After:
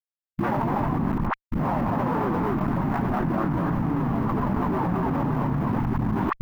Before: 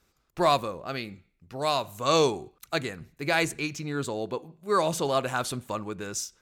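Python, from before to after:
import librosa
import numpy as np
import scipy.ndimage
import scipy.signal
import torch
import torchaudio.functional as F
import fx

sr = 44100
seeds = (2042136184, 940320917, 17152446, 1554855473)

p1 = fx.partial_stretch(x, sr, pct=83)
p2 = p1 + fx.echo_single(p1, sr, ms=244, db=-4.0, dry=0)
p3 = fx.schmitt(p2, sr, flips_db=-30.5)
p4 = fx.echo_pitch(p3, sr, ms=139, semitones=2, count=3, db_per_echo=-3.0)
p5 = fx.dispersion(p4, sr, late='highs', ms=59.0, hz=520.0)
p6 = fx.env_lowpass_down(p5, sr, base_hz=880.0, full_db=-25.5)
p7 = fx.low_shelf(p6, sr, hz=160.0, db=-5.5)
p8 = fx.notch(p7, sr, hz=2300.0, q=13.0)
p9 = np.where(np.abs(p8) >= 10.0 ** (-32.5 / 20.0), p8, 0.0)
p10 = p8 + (p9 * 10.0 ** (-4.0 / 20.0))
p11 = fx.graphic_eq(p10, sr, hz=(125, 250, 500, 1000, 2000, 4000, 8000), db=(8, 10, -11, 10, 4, -5, -11))
p12 = fx.env_flatten(p11, sr, amount_pct=100)
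y = p12 * 10.0 ** (-8.0 / 20.0)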